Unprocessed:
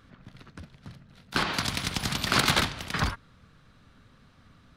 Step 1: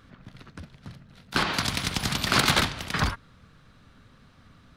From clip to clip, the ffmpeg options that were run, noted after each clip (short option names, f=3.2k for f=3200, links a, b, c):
-af "acontrast=88,volume=-5dB"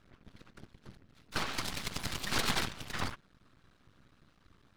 -af "afftfilt=real='hypot(re,im)*cos(2*PI*random(0))':imag='hypot(re,im)*sin(2*PI*random(1))':win_size=512:overlap=0.75,aeval=exprs='max(val(0),0)':c=same"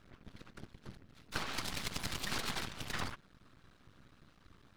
-af "acompressor=threshold=-35dB:ratio=6,volume=2dB"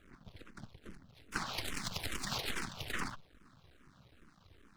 -filter_complex "[0:a]asplit=2[a][b];[b]afreqshift=-2.4[c];[a][c]amix=inputs=2:normalize=1,volume=3dB"